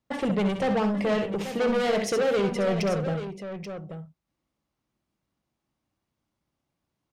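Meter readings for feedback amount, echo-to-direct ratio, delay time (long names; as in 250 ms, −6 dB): repeats not evenly spaced, −5.5 dB, 65 ms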